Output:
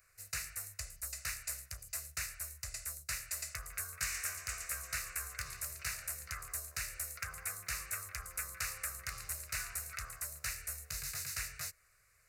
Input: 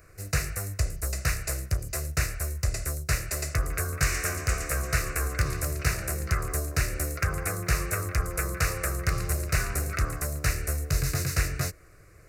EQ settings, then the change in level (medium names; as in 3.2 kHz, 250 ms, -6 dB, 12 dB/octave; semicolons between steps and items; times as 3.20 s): amplifier tone stack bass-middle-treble 10-0-10; bass shelf 130 Hz -11.5 dB; peaking EQ 5.6 kHz -2 dB 0.36 oct; -5.5 dB